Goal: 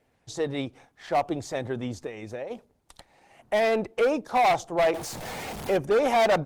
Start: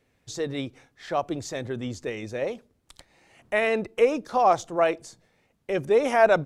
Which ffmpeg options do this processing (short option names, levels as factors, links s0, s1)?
-filter_complex "[0:a]asettb=1/sr,asplit=3[s0][s1][s2];[s0]atrim=end=4.944[s3];[s1]atrim=start=4.94:end=5.77,asetpts=PTS-STARTPTS,afade=t=in:d=0.004:c=qsin,afade=t=out:st=0.826:d=0.004:c=qsin,aeval=exprs='val(0)+0.5*0.0266*sgn(val(0))':c=same[s4];[s2]atrim=start=5.766[s5];[s3][s4]acrossfade=d=0.004:c1=hsin:c2=qsin[s6];[s6][s5]acrossfade=d=0.004:c1=qsin:c2=hsin,equalizer=f=800:t=o:w=0.76:g=8,asplit=3[s7][s8][s9];[s7]afade=t=out:st=2.05:d=0.02[s10];[s8]acompressor=threshold=0.0251:ratio=16,afade=t=in:st=2.05:d=0.02,afade=t=out:st=2.5:d=0.02[s11];[s9]afade=t=in:st=2.5:d=0.02[s12];[s10][s11][s12]amix=inputs=3:normalize=0,asoftclip=type=hard:threshold=0.126" -ar 48000 -c:a libopus -b:a 20k